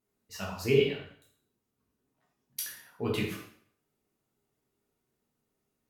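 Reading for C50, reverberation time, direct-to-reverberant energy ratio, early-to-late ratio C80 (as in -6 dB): 3.5 dB, 0.55 s, -4.5 dB, 7.5 dB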